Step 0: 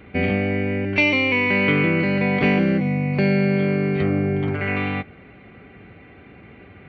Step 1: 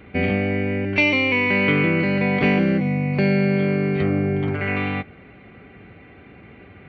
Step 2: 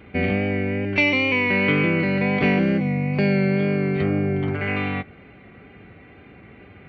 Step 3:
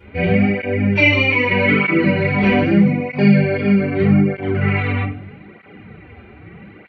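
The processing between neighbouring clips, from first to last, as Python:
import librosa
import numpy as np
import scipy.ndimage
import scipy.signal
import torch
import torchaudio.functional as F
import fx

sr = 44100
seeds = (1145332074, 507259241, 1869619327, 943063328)

y1 = x
y2 = fx.wow_flutter(y1, sr, seeds[0], rate_hz=2.1, depth_cents=28.0)
y2 = y2 * librosa.db_to_amplitude(-1.0)
y3 = fx.room_shoebox(y2, sr, seeds[1], volume_m3=660.0, walls='furnished', distance_m=4.6)
y3 = fx.flanger_cancel(y3, sr, hz=0.8, depth_ms=6.9)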